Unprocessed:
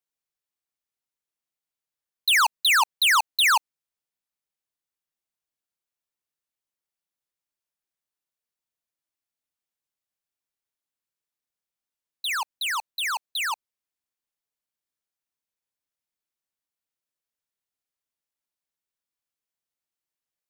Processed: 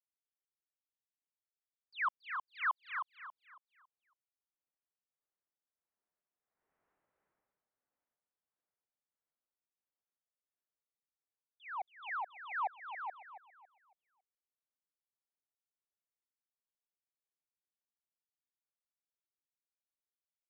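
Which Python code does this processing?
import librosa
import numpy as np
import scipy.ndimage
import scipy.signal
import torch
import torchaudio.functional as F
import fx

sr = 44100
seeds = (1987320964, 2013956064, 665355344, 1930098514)

p1 = fx.doppler_pass(x, sr, speed_mps=53, closest_m=5.8, pass_at_s=6.95)
p2 = scipy.signal.sosfilt(scipy.signal.butter(4, 2000.0, 'lowpass', fs=sr, output='sos'), p1)
p3 = fx.peak_eq(p2, sr, hz=590.0, db=7.5, octaves=2.8)
p4 = fx.rider(p3, sr, range_db=10, speed_s=0.5)
p5 = p3 + (p4 * 10.0 ** (1.0 / 20.0))
p6 = p5 * (1.0 - 0.58 / 2.0 + 0.58 / 2.0 * np.cos(2.0 * np.pi * 1.5 * (np.arange(len(p5)) / sr)))
p7 = p6 + fx.echo_feedback(p6, sr, ms=277, feedback_pct=33, wet_db=-11.0, dry=0)
y = p7 * 10.0 ** (12.5 / 20.0)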